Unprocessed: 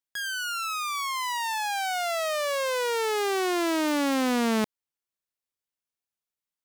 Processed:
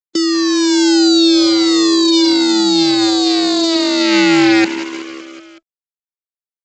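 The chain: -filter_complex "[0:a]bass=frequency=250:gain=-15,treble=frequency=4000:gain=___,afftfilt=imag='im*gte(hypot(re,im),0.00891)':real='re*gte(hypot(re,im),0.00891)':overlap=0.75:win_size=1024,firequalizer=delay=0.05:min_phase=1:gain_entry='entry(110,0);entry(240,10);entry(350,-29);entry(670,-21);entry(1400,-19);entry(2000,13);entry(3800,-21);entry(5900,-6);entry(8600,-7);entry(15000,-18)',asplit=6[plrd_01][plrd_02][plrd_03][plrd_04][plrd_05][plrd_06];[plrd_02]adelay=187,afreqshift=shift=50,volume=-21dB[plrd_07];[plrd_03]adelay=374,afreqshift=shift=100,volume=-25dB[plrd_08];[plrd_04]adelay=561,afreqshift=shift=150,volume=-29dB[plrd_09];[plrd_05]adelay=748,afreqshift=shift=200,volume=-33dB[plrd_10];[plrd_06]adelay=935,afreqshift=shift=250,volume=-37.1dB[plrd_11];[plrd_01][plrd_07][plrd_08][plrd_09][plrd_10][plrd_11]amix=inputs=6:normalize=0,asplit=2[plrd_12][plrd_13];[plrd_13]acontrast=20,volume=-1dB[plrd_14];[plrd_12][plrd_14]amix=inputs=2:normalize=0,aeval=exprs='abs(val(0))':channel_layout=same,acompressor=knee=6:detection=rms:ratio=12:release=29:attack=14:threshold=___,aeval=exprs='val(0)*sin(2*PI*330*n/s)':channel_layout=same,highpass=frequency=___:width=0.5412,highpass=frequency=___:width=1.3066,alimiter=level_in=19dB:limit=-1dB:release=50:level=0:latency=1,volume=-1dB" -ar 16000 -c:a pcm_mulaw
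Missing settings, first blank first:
12, -24dB, 170, 170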